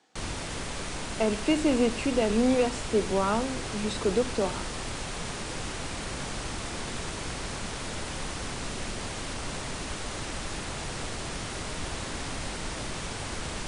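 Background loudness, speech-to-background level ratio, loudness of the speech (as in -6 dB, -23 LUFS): -34.5 LUFS, 7.0 dB, -27.5 LUFS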